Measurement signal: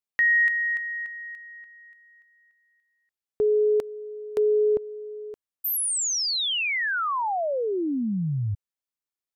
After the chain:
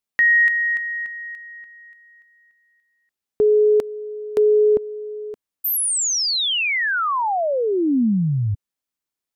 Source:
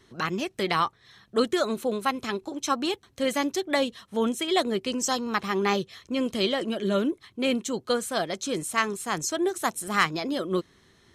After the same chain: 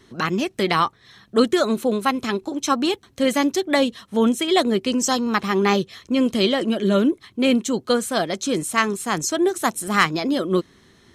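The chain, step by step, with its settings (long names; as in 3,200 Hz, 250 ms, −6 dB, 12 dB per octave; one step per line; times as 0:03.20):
parametric band 240 Hz +4 dB 0.97 octaves
level +5 dB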